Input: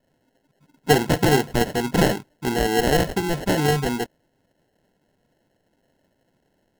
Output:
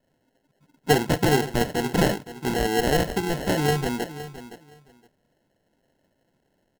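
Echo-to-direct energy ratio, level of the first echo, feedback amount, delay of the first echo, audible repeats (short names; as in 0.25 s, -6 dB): -14.0 dB, -14.0 dB, 18%, 0.516 s, 2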